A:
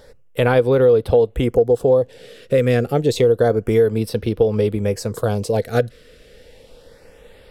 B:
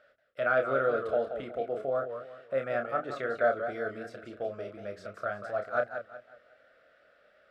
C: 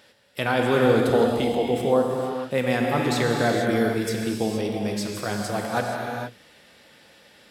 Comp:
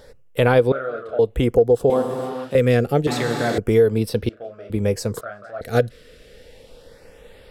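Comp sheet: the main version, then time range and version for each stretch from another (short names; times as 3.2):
A
0.72–1.19 from B
1.9–2.55 from C
3.07–3.58 from C
4.29–4.7 from B
5.21–5.61 from B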